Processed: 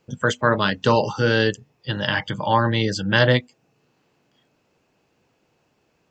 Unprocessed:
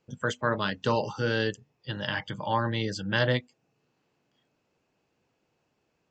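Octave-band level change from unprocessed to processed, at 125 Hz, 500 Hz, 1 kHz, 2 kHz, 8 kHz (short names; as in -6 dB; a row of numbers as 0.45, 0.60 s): +8.5, +8.5, +8.5, +8.5, +8.5 dB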